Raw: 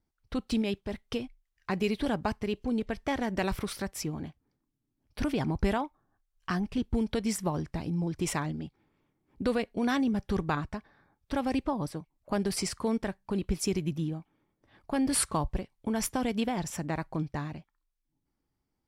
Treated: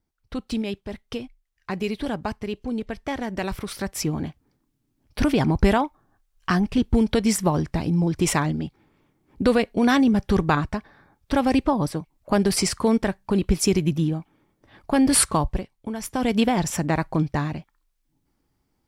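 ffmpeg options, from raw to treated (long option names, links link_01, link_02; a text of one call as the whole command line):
ffmpeg -i in.wav -af "volume=22.5dB,afade=type=in:start_time=3.65:duration=0.46:silence=0.421697,afade=type=out:start_time=15.19:duration=0.84:silence=0.237137,afade=type=in:start_time=16.03:duration=0.33:silence=0.223872" out.wav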